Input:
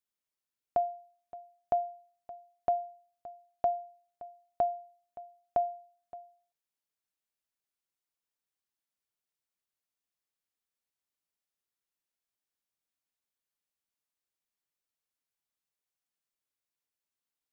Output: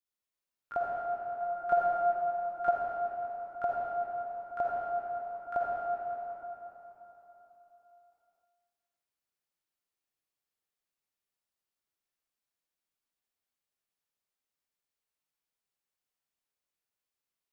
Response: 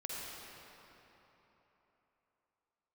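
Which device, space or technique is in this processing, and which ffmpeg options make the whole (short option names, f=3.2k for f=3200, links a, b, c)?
shimmer-style reverb: -filter_complex "[0:a]asplit=2[a][b];[b]asetrate=88200,aresample=44100,atempo=0.5,volume=-10dB[c];[a][c]amix=inputs=2:normalize=0[d];[1:a]atrim=start_sample=2205[e];[d][e]afir=irnorm=-1:irlink=0,asettb=1/sr,asplit=3[f][g][h];[f]atrim=end=1.404[i];[g]atrim=start=1.4:end=2.71,asetpts=PTS-STARTPTS,afade=t=in:d=0.004:c=qsin,afade=t=out:st=1.306:d=0.004:c=qsin,aecho=1:1:5.7:0.9,atrim=end_sample=57771[j];[h]atrim=start=2.706[k];[i][j]acrossfade=d=0.004:c1=hsin:c2=qsin[l];[l][k]acrossfade=d=0.004:c1=qsin:c2=hsin"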